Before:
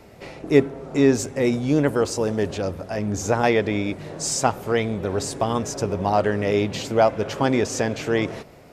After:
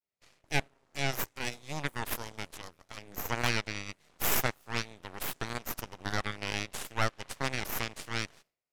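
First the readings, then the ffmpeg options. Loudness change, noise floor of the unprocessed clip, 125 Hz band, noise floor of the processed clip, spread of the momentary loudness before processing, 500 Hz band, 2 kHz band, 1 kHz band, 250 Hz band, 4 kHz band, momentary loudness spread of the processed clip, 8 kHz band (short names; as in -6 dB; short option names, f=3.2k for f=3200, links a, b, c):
-12.0 dB, -46 dBFS, -12.5 dB, -85 dBFS, 8 LU, -20.5 dB, -4.5 dB, -12.0 dB, -19.5 dB, -4.0 dB, 13 LU, -9.5 dB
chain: -af "tiltshelf=f=1.1k:g=-8.5,agate=range=-33dB:threshold=-40dB:ratio=3:detection=peak,aeval=exprs='0.668*(cos(1*acos(clip(val(0)/0.668,-1,1)))-cos(1*PI/2))+0.211*(cos(3*acos(clip(val(0)/0.668,-1,1)))-cos(3*PI/2))+0.133*(cos(6*acos(clip(val(0)/0.668,-1,1)))-cos(6*PI/2))':c=same,volume=-6.5dB"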